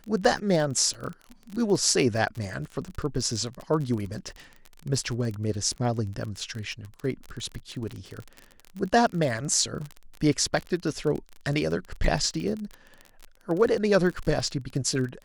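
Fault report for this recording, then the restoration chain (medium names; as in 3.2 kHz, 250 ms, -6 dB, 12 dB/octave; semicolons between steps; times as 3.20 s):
crackle 35 per s -31 dBFS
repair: de-click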